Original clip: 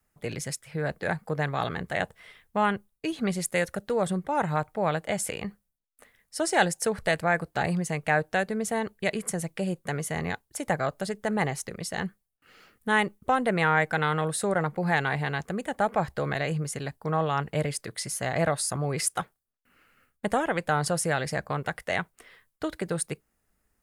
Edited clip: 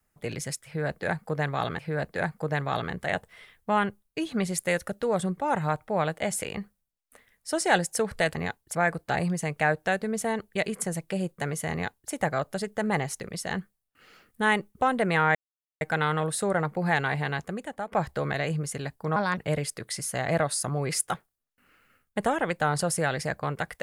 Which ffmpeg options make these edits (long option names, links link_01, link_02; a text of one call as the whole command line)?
ffmpeg -i in.wav -filter_complex "[0:a]asplit=8[link_01][link_02][link_03][link_04][link_05][link_06][link_07][link_08];[link_01]atrim=end=1.792[link_09];[link_02]atrim=start=0.658:end=7.222[link_10];[link_03]atrim=start=10.188:end=10.592[link_11];[link_04]atrim=start=7.218:end=13.82,asetpts=PTS-STARTPTS,afade=type=out:start_time=6.598:duration=0.004:curve=hsin,apad=pad_dur=0.46[link_12];[link_05]atrim=start=13.82:end=15.93,asetpts=PTS-STARTPTS,afade=type=in:duration=0.004:curve=hsin,afade=type=out:start_time=1.55:duration=0.56:silence=0.223872[link_13];[link_06]atrim=start=15.93:end=17.174,asetpts=PTS-STARTPTS,afade=type=in:duration=0.004:curve=hsin:silence=0.223872[link_14];[link_07]atrim=start=17.17:end=17.45,asetpts=PTS-STARTPTS,asetrate=56889,aresample=44100,atrim=end_sample=9572,asetpts=PTS-STARTPTS[link_15];[link_08]atrim=start=17.446[link_16];[link_09][link_10]acrossfade=duration=0.004:curve1=hsin:curve2=hsin[link_17];[link_17][link_11]acrossfade=duration=0.004:curve1=hsin:curve2=hsin[link_18];[link_12][link_13][link_14]concat=n=3:v=0:a=1[link_19];[link_18][link_19]acrossfade=duration=0.004:curve1=hsin:curve2=hsin[link_20];[link_20][link_15]acrossfade=duration=0.004:curve1=hsin:curve2=hsin[link_21];[link_21][link_16]acrossfade=duration=0.004:curve1=hsin:curve2=hsin" out.wav